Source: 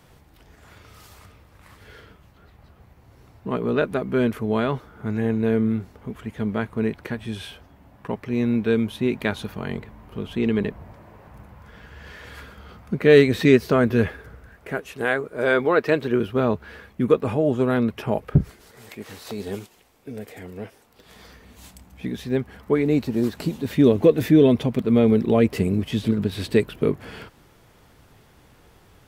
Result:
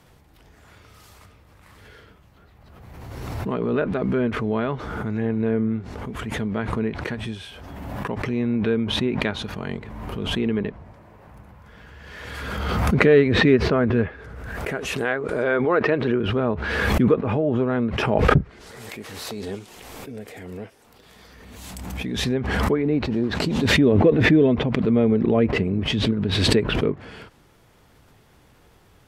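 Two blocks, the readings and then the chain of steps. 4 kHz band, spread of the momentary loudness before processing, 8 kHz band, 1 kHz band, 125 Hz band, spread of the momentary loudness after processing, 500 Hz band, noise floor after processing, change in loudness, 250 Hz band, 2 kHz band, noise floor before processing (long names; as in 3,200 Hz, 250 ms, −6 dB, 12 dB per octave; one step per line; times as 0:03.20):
+8.0 dB, 21 LU, can't be measured, +2.5 dB, +1.5 dB, 20 LU, −1.0 dB, −55 dBFS, 0.0 dB, −0.5 dB, +3.5 dB, −54 dBFS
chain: treble cut that deepens with the level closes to 2,300 Hz, closed at −16.5 dBFS
background raised ahead of every attack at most 28 dB per second
level −2 dB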